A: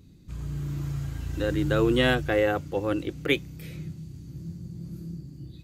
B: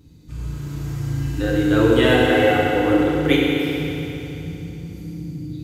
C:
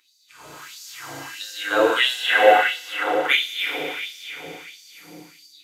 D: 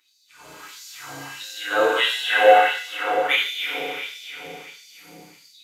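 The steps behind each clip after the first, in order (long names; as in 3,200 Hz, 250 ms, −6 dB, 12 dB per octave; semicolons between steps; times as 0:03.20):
feedback delay network reverb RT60 3.3 s, high-frequency decay 0.9×, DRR −6 dB; level +1 dB
automatic gain control gain up to 5 dB; auto-filter high-pass sine 1.5 Hz 620–5,100 Hz
reverb whose tail is shaped and stops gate 190 ms falling, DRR 0.5 dB; level −4 dB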